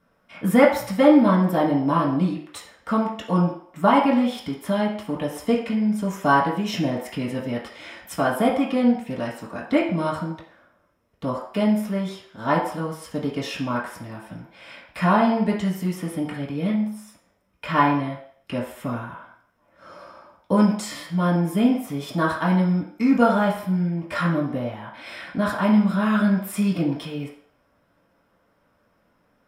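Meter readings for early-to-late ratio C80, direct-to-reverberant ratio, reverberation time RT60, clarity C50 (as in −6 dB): 9.0 dB, −6.5 dB, 0.60 s, 6.0 dB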